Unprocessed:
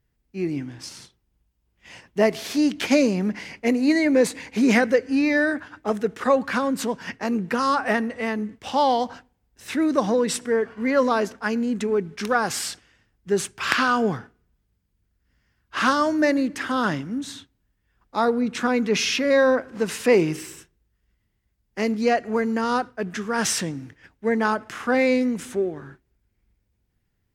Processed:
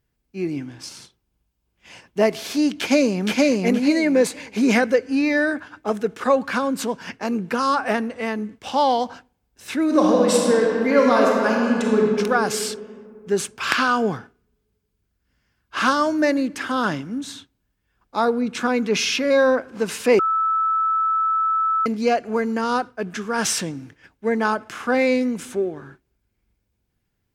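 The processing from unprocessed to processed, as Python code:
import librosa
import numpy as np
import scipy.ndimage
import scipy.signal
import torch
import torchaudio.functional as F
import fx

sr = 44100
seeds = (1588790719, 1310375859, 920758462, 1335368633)

y = fx.echo_throw(x, sr, start_s=2.79, length_s=0.62, ms=470, feedback_pct=20, wet_db=-0.5)
y = fx.reverb_throw(y, sr, start_s=9.84, length_s=2.19, rt60_s=2.6, drr_db=-2.0)
y = fx.edit(y, sr, fx.bleep(start_s=20.19, length_s=1.67, hz=1310.0, db=-18.5), tone=tone)
y = fx.low_shelf(y, sr, hz=130.0, db=-5.5)
y = fx.notch(y, sr, hz=1900.0, q=12.0)
y = y * librosa.db_to_amplitude(1.5)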